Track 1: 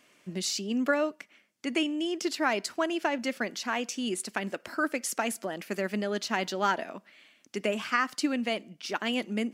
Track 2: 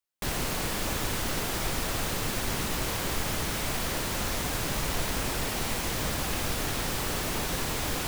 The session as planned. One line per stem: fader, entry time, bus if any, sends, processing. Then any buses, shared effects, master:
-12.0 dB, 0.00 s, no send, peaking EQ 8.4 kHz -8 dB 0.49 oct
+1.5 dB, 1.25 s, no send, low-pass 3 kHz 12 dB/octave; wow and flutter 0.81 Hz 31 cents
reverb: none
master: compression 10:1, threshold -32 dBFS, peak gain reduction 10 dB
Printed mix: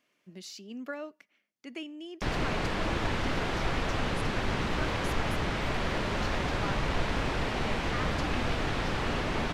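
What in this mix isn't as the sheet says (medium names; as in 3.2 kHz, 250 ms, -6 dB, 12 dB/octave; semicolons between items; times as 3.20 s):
stem 2: entry 1.25 s -> 2.00 s; master: missing compression 10:1, threshold -32 dBFS, peak gain reduction 10 dB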